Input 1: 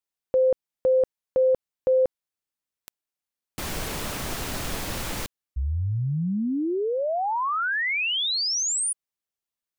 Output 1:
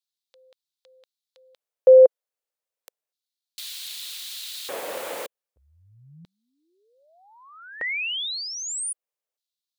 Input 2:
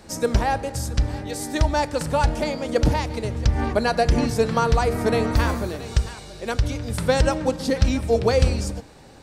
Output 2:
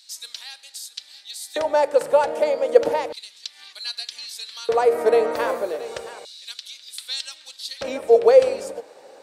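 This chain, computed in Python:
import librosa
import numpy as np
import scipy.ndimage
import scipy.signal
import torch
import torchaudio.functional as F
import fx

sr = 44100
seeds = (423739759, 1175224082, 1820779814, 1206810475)

y = fx.dynamic_eq(x, sr, hz=5500.0, q=1.5, threshold_db=-47.0, ratio=4.0, max_db=-6)
y = fx.filter_lfo_highpass(y, sr, shape='square', hz=0.32, low_hz=510.0, high_hz=3900.0, q=3.6)
y = y * 10.0 ** (-2.0 / 20.0)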